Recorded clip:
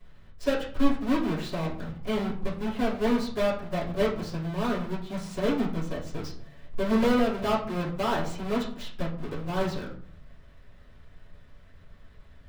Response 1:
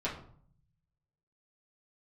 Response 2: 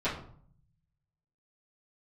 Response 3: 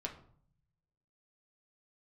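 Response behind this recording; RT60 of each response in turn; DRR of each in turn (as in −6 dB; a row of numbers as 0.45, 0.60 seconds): 2; 0.55, 0.55, 0.55 seconds; −7.5, −13.5, 0.0 decibels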